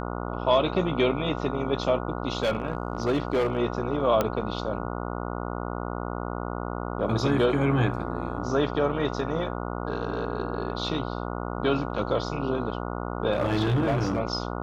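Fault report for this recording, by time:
mains buzz 60 Hz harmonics 24 −32 dBFS
0:02.40–0:03.57: clipping −19.5 dBFS
0:04.21: click −10 dBFS
0:13.33–0:14.20: clipping −19.5 dBFS

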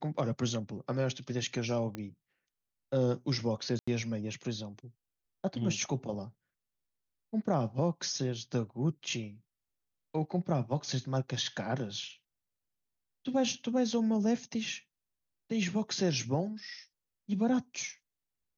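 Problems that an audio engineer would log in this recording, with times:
0:01.95: click −24 dBFS
0:03.79–0:03.88: drop-out 85 ms

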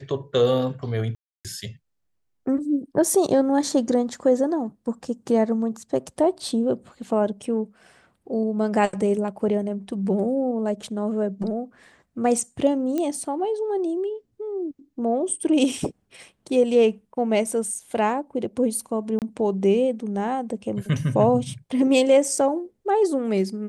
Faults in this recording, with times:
0:01.15–0:01.45: drop-out 297 ms
0:12.98: click −14 dBFS
0:19.19–0:19.22: drop-out 28 ms

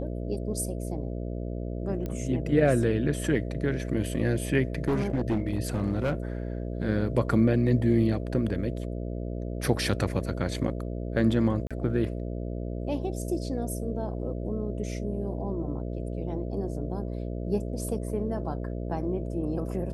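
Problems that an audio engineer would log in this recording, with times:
mains buzz 60 Hz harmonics 11 −33 dBFS
0:02.06: click −21 dBFS
0:04.88–0:06.13: clipping −21.5 dBFS
0:11.67–0:11.71: drop-out 36 ms

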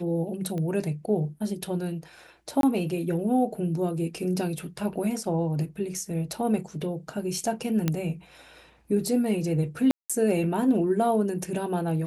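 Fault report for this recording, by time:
0:00.58: click −22 dBFS
0:02.61–0:02.63: drop-out 22 ms
0:07.88: click −11 dBFS
0:09.91–0:10.10: drop-out 186 ms

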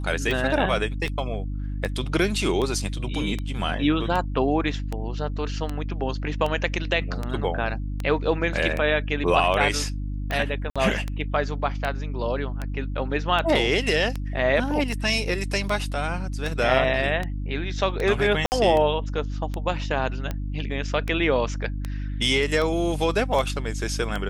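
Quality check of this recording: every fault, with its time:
mains hum 50 Hz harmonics 6 −29 dBFS
scratch tick 78 rpm
0:01.06: drop-out 3.5 ms
0:10.70–0:10.76: drop-out 56 ms
0:18.46–0:18.52: drop-out 59 ms

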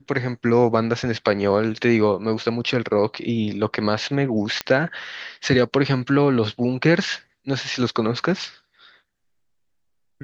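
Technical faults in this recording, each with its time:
0:04.61: click −8 dBFS

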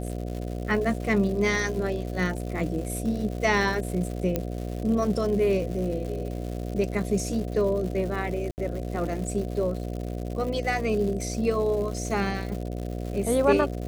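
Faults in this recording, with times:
mains buzz 60 Hz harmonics 12 −32 dBFS
surface crackle 230 per second −34 dBFS
0:04.36: click −12 dBFS
0:08.51–0:08.58: drop-out 69 ms

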